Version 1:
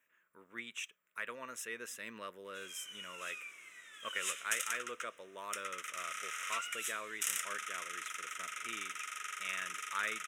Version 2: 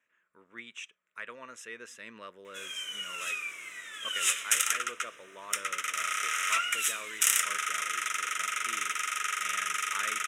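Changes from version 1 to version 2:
speech: add low-pass 7.3 kHz 12 dB/octave; background +11.0 dB

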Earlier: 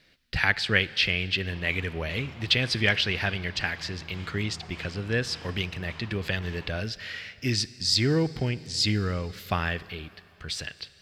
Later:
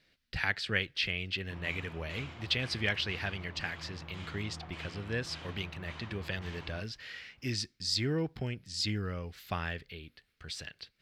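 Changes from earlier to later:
speech -6.5 dB; reverb: off

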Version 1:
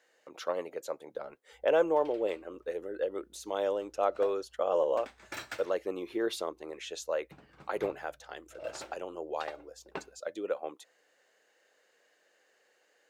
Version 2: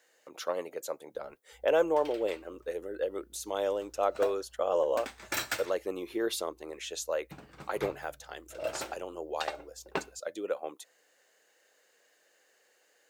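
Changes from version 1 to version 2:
background +6.5 dB; master: add treble shelf 7 kHz +12 dB

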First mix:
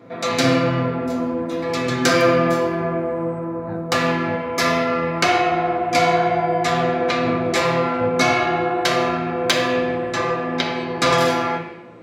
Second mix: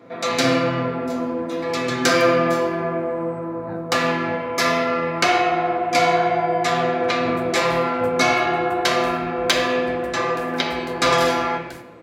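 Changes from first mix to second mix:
second sound: unmuted; master: add bass shelf 150 Hz -9 dB

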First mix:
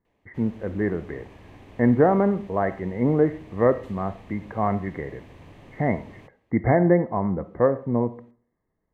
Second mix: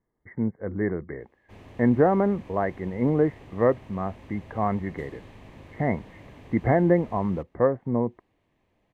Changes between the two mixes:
background: entry +1.15 s; reverb: off

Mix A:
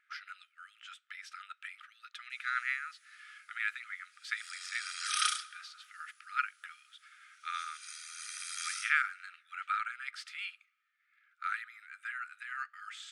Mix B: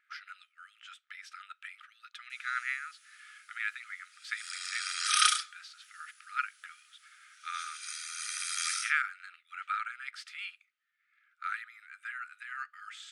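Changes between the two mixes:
background +8.0 dB; reverb: off

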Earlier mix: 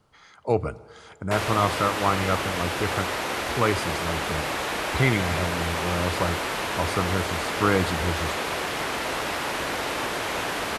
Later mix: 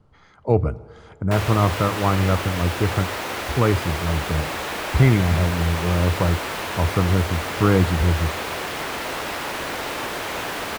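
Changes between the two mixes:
speech: add tilt EQ -3 dB/octave; background: remove brick-wall FIR low-pass 13 kHz

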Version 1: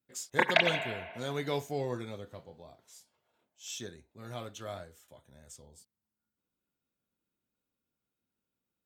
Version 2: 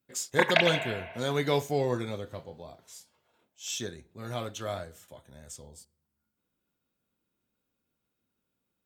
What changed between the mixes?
speech +6.0 dB; reverb: on, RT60 0.65 s

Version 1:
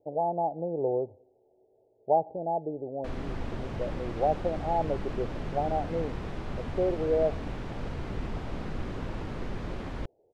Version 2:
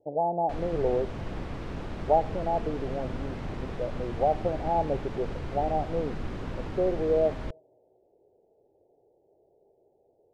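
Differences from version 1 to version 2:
background: entry -2.55 s; reverb: on, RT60 0.90 s

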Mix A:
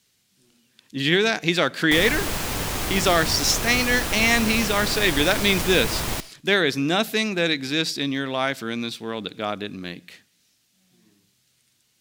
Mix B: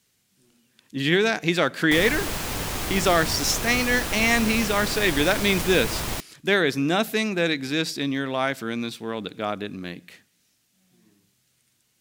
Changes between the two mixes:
speech: add peaking EQ 4.1 kHz -4.5 dB 1.4 oct; reverb: off

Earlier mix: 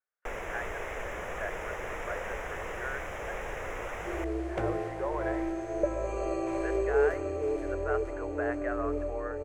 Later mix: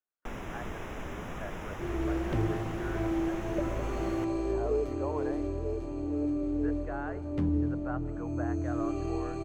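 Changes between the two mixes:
speech: add tilt EQ -4.5 dB/octave; second sound: entry -2.25 s; master: add graphic EQ 125/250/500/2000/4000/8000 Hz +7/+11/-10/-8/+5/-6 dB

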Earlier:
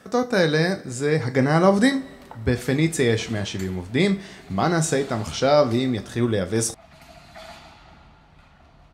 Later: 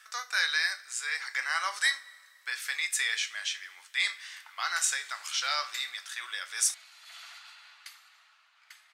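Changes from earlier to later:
background: entry +2.15 s; master: add high-pass 1.4 kHz 24 dB/octave

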